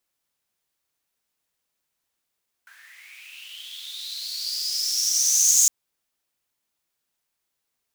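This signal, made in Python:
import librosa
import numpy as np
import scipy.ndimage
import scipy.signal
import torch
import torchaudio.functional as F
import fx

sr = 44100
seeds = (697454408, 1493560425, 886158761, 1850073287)

y = fx.riser_noise(sr, seeds[0], length_s=3.01, colour='pink', kind='highpass', start_hz=1500.0, end_hz=6700.0, q=10.0, swell_db=36.0, law='linear')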